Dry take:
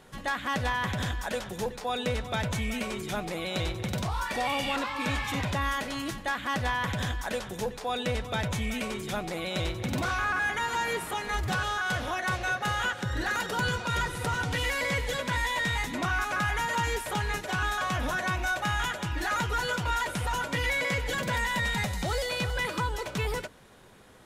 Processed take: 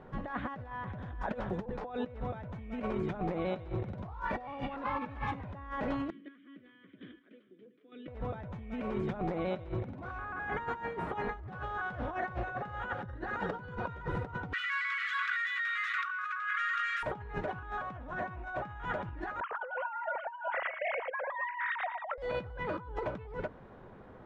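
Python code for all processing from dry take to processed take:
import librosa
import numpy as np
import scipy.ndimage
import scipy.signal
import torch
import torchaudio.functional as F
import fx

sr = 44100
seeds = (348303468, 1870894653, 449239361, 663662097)

y = fx.chain(x, sr, fx.cabinet(low_hz=210.0, low_slope=12, high_hz=4300.0, hz=(250.0, 370.0, 800.0, 1200.0, 2200.0, 3200.0), db=(-7, 6, -6, 5, -5, 4)),
    fx.chopper(hz=1.1, depth_pct=65, duty_pct=20),
    fx.vowel_filter(vowel='i'), at=(6.1, 8.08))
y = fx.chain(y, sr, fx.brickwall_highpass(low_hz=1100.0),
    fx.env_flatten(amount_pct=100), at=(14.53, 17.03))
y = fx.chain(y, sr, fx.sine_speech(),
    fx.over_compress(threshold_db=-28.0, ratio=-0.5),
    fx.echo_single(ms=113, db=-9.5), at=(19.4, 22.18))
y = scipy.signal.sosfilt(scipy.signal.butter(2, 1200.0, 'lowpass', fs=sr, output='sos'), y)
y = fx.over_compress(y, sr, threshold_db=-36.0, ratio=-0.5)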